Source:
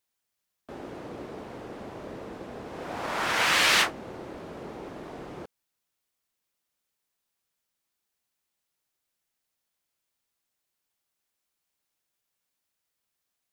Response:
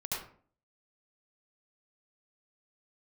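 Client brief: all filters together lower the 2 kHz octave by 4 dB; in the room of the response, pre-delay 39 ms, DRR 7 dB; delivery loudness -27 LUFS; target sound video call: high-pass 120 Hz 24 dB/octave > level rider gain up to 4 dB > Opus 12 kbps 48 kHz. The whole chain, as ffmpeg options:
-filter_complex "[0:a]equalizer=f=2000:t=o:g=-5,asplit=2[s0][s1];[1:a]atrim=start_sample=2205,adelay=39[s2];[s1][s2]afir=irnorm=-1:irlink=0,volume=0.299[s3];[s0][s3]amix=inputs=2:normalize=0,highpass=f=120:w=0.5412,highpass=f=120:w=1.3066,dynaudnorm=m=1.58,volume=1.5" -ar 48000 -c:a libopus -b:a 12k

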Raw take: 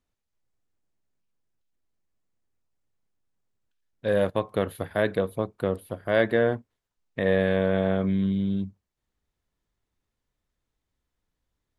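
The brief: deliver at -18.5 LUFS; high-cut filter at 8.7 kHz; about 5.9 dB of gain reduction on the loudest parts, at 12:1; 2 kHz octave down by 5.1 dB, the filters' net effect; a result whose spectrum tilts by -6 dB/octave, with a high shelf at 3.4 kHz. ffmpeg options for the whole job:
-af "lowpass=8700,equalizer=f=2000:t=o:g=-8,highshelf=f=3400:g=5,acompressor=threshold=0.0708:ratio=12,volume=3.98"

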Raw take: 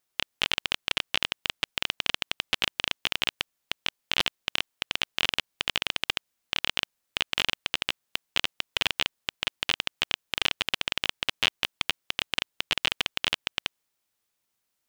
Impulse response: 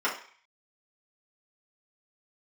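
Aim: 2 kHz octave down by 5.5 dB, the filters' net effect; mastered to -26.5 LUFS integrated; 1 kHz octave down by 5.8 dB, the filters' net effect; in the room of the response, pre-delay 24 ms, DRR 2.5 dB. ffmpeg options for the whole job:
-filter_complex "[0:a]equalizer=f=1000:t=o:g=-5.5,equalizer=f=2000:t=o:g=-6.5,asplit=2[s0][s1];[1:a]atrim=start_sample=2205,adelay=24[s2];[s1][s2]afir=irnorm=-1:irlink=0,volume=0.188[s3];[s0][s3]amix=inputs=2:normalize=0,volume=1.68"

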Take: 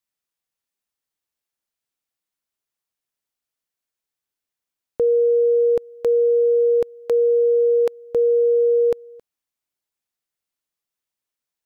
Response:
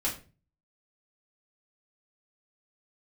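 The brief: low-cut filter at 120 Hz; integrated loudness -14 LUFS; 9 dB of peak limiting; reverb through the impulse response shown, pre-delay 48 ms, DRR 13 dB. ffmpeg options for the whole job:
-filter_complex "[0:a]highpass=120,alimiter=limit=0.0841:level=0:latency=1,asplit=2[s0][s1];[1:a]atrim=start_sample=2205,adelay=48[s2];[s1][s2]afir=irnorm=-1:irlink=0,volume=0.112[s3];[s0][s3]amix=inputs=2:normalize=0,volume=3.98"

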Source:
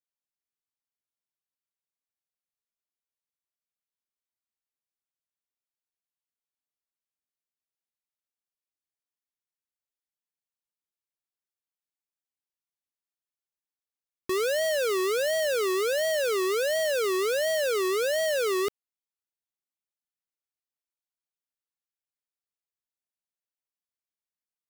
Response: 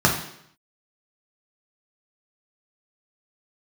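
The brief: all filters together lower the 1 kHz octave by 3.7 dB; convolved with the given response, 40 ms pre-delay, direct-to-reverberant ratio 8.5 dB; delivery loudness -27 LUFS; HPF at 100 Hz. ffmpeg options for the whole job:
-filter_complex "[0:a]highpass=100,equalizer=f=1000:t=o:g=-5,asplit=2[s0][s1];[1:a]atrim=start_sample=2205,adelay=40[s2];[s1][s2]afir=irnorm=-1:irlink=0,volume=0.0422[s3];[s0][s3]amix=inputs=2:normalize=0,volume=0.944"

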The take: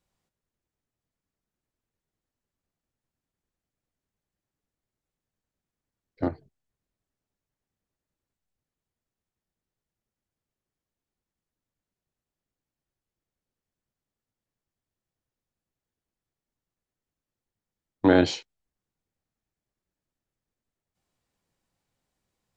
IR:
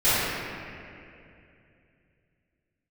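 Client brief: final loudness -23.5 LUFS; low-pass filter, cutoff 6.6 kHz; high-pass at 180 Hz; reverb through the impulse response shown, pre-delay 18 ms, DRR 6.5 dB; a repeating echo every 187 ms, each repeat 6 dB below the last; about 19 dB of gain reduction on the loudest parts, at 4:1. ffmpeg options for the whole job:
-filter_complex "[0:a]highpass=180,lowpass=6600,acompressor=threshold=0.0141:ratio=4,aecho=1:1:187|374|561|748|935|1122:0.501|0.251|0.125|0.0626|0.0313|0.0157,asplit=2[s0][s1];[1:a]atrim=start_sample=2205,adelay=18[s2];[s1][s2]afir=irnorm=-1:irlink=0,volume=0.0501[s3];[s0][s3]amix=inputs=2:normalize=0,volume=9.44"

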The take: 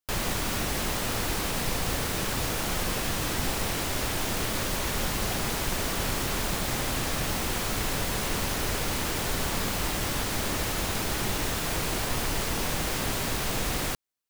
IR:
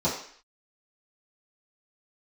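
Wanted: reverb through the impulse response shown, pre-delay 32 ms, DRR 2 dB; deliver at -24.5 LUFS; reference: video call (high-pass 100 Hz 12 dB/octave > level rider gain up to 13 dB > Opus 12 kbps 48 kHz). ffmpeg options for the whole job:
-filter_complex "[0:a]asplit=2[s0][s1];[1:a]atrim=start_sample=2205,adelay=32[s2];[s1][s2]afir=irnorm=-1:irlink=0,volume=0.2[s3];[s0][s3]amix=inputs=2:normalize=0,highpass=100,dynaudnorm=m=4.47,volume=1.68" -ar 48000 -c:a libopus -b:a 12k

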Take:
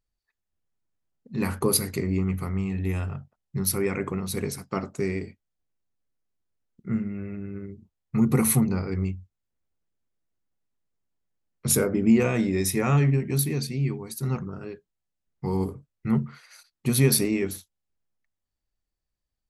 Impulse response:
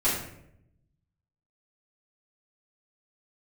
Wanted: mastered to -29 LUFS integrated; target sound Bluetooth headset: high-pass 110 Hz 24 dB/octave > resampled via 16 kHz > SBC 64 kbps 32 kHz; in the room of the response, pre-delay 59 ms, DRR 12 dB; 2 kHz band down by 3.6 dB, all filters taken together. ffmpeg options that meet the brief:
-filter_complex "[0:a]equalizer=f=2000:t=o:g=-4.5,asplit=2[s0][s1];[1:a]atrim=start_sample=2205,adelay=59[s2];[s1][s2]afir=irnorm=-1:irlink=0,volume=0.0631[s3];[s0][s3]amix=inputs=2:normalize=0,highpass=f=110:w=0.5412,highpass=f=110:w=1.3066,aresample=16000,aresample=44100,volume=0.794" -ar 32000 -c:a sbc -b:a 64k

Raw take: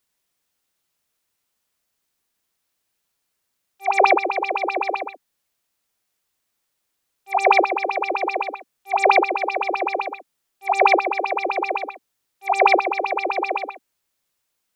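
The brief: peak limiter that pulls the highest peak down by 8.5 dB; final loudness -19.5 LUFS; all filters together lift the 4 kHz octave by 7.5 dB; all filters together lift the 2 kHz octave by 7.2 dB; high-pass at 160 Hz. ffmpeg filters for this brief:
-af "highpass=160,equalizer=f=2000:t=o:g=6,equalizer=f=4000:t=o:g=7.5,volume=0.944,alimiter=limit=0.501:level=0:latency=1"

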